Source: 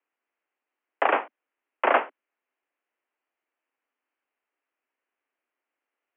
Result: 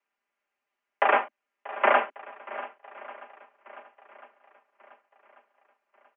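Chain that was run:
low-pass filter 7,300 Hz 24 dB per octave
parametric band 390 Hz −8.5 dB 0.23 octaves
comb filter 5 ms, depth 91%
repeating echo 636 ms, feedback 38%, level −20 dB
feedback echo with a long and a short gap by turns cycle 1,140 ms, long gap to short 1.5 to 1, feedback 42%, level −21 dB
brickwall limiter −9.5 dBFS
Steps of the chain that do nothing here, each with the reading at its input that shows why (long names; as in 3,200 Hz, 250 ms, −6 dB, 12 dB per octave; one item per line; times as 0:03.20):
low-pass filter 7,300 Hz: nothing at its input above 3,200 Hz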